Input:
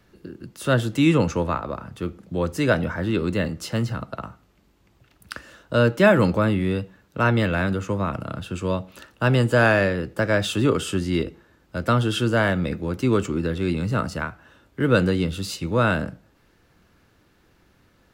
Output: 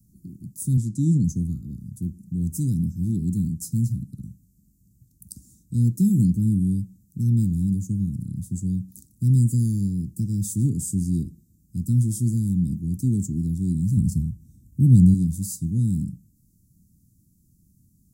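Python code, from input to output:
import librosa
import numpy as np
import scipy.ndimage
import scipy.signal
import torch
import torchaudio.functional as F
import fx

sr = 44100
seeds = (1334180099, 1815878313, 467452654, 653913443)

y = fx.bandpass_edges(x, sr, low_hz=110.0, high_hz=6600.0, at=(0.77, 1.24))
y = fx.low_shelf(y, sr, hz=190.0, db=10.5, at=(13.97, 15.14))
y = scipy.signal.sosfilt(scipy.signal.cheby2(4, 60, [570.0, 2900.0], 'bandstop', fs=sr, output='sos'), y)
y = fx.low_shelf(y, sr, hz=93.0, db=-11.0)
y = y * 10.0 ** (7.5 / 20.0)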